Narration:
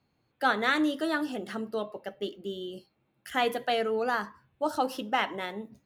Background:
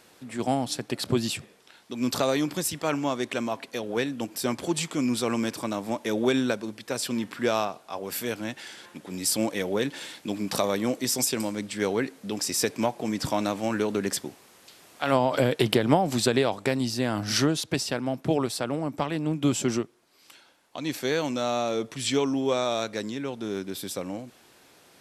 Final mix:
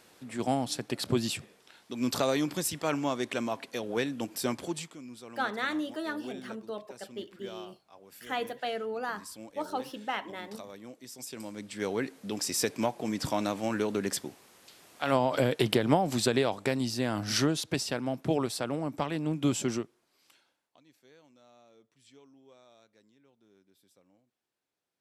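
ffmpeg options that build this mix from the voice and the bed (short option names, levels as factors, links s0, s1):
-filter_complex "[0:a]adelay=4950,volume=0.501[s0];[1:a]volume=4.73,afade=t=out:st=4.46:d=0.53:silence=0.141254,afade=t=in:st=11.17:d=0.99:silence=0.149624,afade=t=out:st=19.5:d=1.34:silence=0.0354813[s1];[s0][s1]amix=inputs=2:normalize=0"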